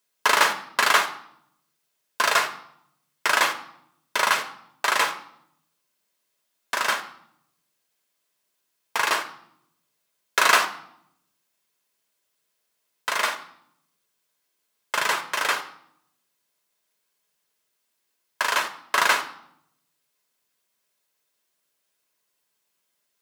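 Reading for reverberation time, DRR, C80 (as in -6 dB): 0.70 s, 5.5 dB, 15.5 dB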